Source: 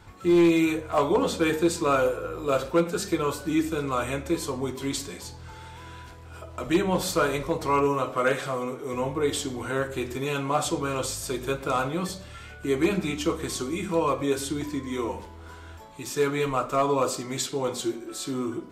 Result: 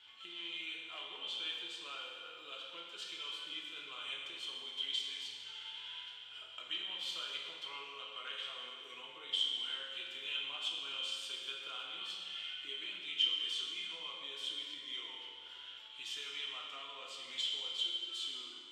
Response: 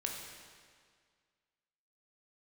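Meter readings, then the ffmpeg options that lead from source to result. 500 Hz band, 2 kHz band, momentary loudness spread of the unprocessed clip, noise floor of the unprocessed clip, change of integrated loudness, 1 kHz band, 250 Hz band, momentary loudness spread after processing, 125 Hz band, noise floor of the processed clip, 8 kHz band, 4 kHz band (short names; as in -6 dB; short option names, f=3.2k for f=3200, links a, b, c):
-32.0 dB, -12.5 dB, 16 LU, -44 dBFS, -13.5 dB, -23.5 dB, -37.0 dB, 11 LU, under -40 dB, -52 dBFS, -19.5 dB, +2.0 dB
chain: -filter_complex "[0:a]acompressor=threshold=-34dB:ratio=3,bandpass=f=3.1k:t=q:w=16:csg=0[a];[1:a]atrim=start_sample=2205,asetrate=39690,aresample=44100[b];[a][b]afir=irnorm=-1:irlink=0,volume=15.5dB"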